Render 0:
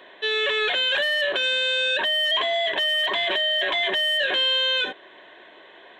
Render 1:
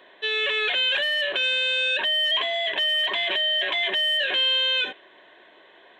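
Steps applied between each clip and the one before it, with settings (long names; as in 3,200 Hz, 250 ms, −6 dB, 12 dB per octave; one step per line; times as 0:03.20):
dynamic equaliser 2,600 Hz, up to +7 dB, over −39 dBFS, Q 1.8
level −4.5 dB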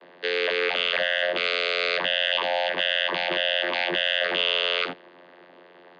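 channel vocoder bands 16, saw 88.1 Hz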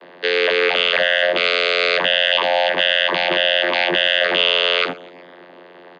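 repeating echo 125 ms, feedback 57%, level −21.5 dB
level +7.5 dB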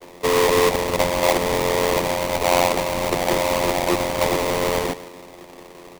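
running median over 41 samples
sample-rate reduction 1,500 Hz, jitter 20%
level +4 dB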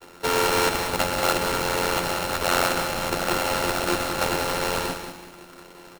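samples sorted by size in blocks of 32 samples
repeating echo 187 ms, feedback 32%, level −8.5 dB
level −4.5 dB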